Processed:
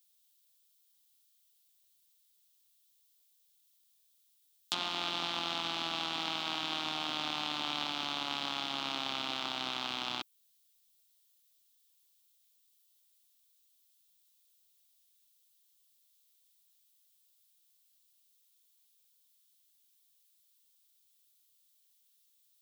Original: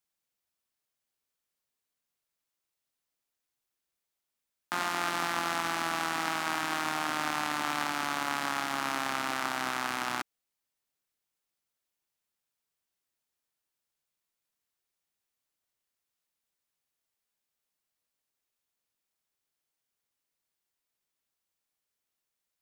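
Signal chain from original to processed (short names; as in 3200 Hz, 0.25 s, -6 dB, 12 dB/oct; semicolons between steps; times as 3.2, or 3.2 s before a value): treble ducked by the level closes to 2500 Hz, closed at -32 dBFS; resonant high shelf 2500 Hz +11.5 dB, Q 3; added noise violet -66 dBFS; gain -5 dB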